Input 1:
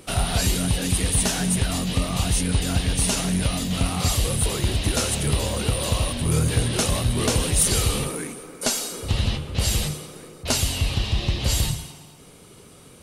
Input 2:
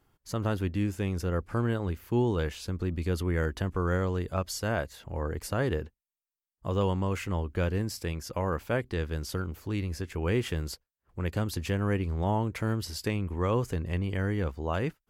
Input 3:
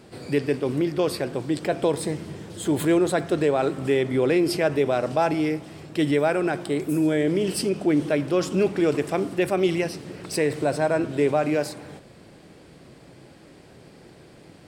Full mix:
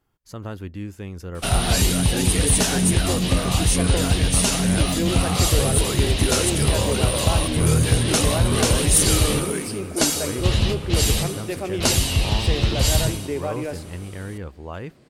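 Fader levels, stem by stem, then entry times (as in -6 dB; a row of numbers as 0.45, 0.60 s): +3.0, -3.5, -6.5 dB; 1.35, 0.00, 2.10 s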